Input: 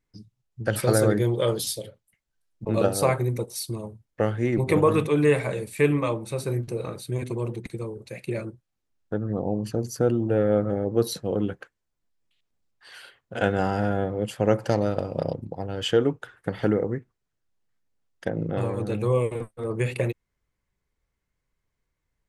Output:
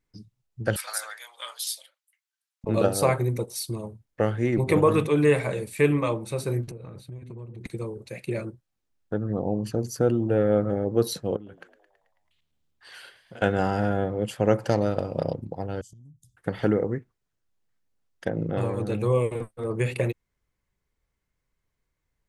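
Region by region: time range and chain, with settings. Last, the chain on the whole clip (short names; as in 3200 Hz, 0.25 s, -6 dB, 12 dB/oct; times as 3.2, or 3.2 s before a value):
0.76–2.64 Bessel high-pass 1400 Hz, order 8 + AM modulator 230 Hz, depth 15%
6.71–7.61 gate -28 dBFS, range -6 dB + tone controls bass +9 dB, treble -9 dB + compressor 8:1, threshold -36 dBFS
11.36–13.42 compressor 8:1, threshold -39 dBFS + frequency-shifting echo 0.109 s, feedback 62%, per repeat +75 Hz, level -14.5 dB
15.81–16.37 inverse Chebyshev band-stop 490–2300 Hz, stop band 60 dB + compressor 16:1, threshold -46 dBFS
whole clip: dry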